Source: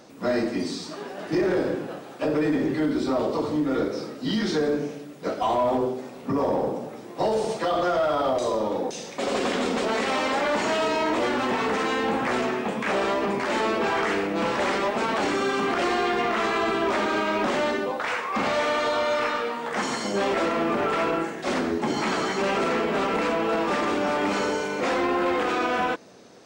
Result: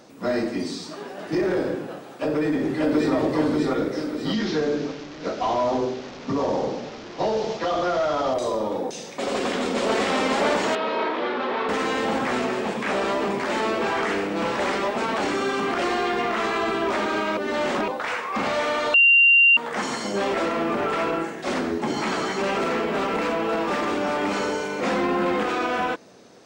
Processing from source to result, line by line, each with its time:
2.04–3.14 echo throw 0.59 s, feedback 50%, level -0.5 dB
4.33–8.34 delta modulation 32 kbps, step -33 dBFS
9.19–9.98 echo throw 0.55 s, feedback 80%, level -1.5 dB
10.75–11.69 speaker cabinet 280–3700 Hz, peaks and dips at 290 Hz -5 dB, 660 Hz -4 dB, 1900 Hz -3 dB, 2800 Hz -5 dB
17.37–17.88 reverse
18.94–19.57 bleep 2770 Hz -11.5 dBFS
22.57–23.92 median filter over 3 samples
24.84–25.44 bell 190 Hz +13 dB 0.46 oct

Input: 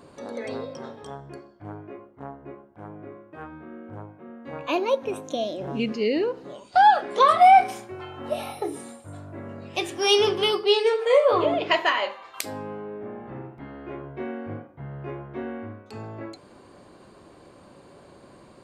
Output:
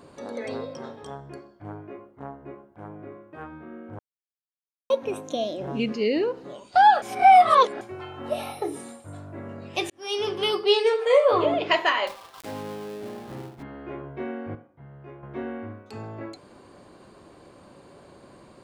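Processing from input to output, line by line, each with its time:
3.99–4.9 mute
7.02–7.81 reverse
9.9–10.63 fade in
12.07–13.63 switching dead time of 0.19 ms
14.55–15.23 gain -9 dB

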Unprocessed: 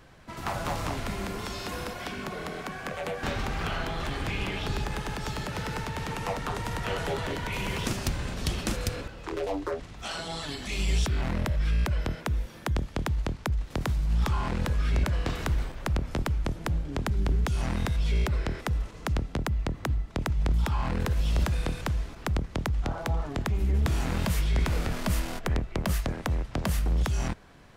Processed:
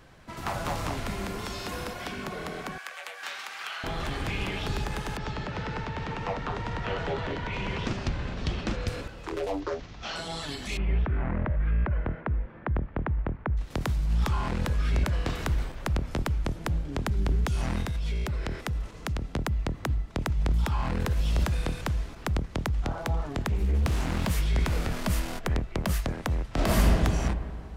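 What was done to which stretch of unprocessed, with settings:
2.78–3.84 HPF 1300 Hz
5.17–8.88 Gaussian blur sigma 1.7 samples
9.6–10.16 CVSD 32 kbps
10.77–13.57 LPF 2000 Hz 24 dB/oct
17.82–19.24 compressor, threshold -26 dBFS
23.48–24.31 Doppler distortion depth 0.45 ms
26.49–26.93 reverb throw, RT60 2.1 s, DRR -7 dB

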